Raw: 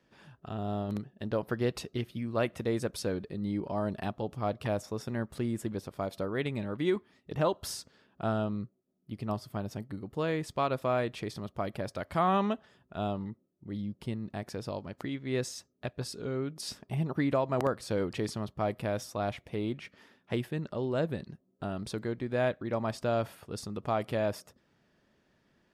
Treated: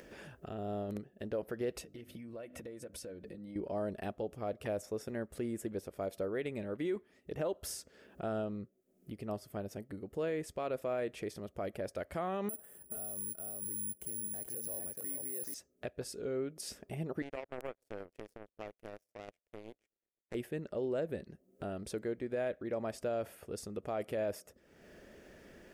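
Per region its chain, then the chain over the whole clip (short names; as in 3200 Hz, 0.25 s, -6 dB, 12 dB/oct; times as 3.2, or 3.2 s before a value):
1.81–3.56 notches 50/100/150/200/250/300 Hz + notch comb 410 Hz + compressor, threshold -43 dBFS
12.49–15.54 high shelf 3200 Hz -8.5 dB + echo 0.431 s -9.5 dB + careless resampling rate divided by 4×, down filtered, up zero stuff
17.22–20.35 dark delay 0.122 s, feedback 76%, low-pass 820 Hz, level -19.5 dB + power-law curve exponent 3
whole clip: graphic EQ 125/250/500/1000/4000 Hz -11/-4/+4/-11/-10 dB; limiter -27.5 dBFS; upward compressor, threshold -40 dBFS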